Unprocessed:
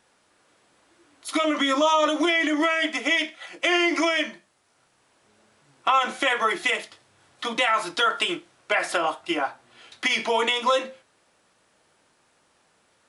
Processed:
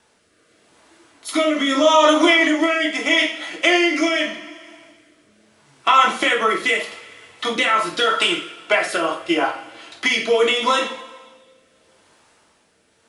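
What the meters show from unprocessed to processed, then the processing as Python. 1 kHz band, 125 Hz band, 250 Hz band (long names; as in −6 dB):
+5.0 dB, can't be measured, +6.0 dB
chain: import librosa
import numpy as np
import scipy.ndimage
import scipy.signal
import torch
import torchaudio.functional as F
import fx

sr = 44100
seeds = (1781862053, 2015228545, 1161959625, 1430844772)

y = fx.rev_double_slope(x, sr, seeds[0], early_s=0.43, late_s=2.2, knee_db=-20, drr_db=1.5)
y = fx.rotary(y, sr, hz=0.8)
y = y * librosa.db_to_amplitude(6.5)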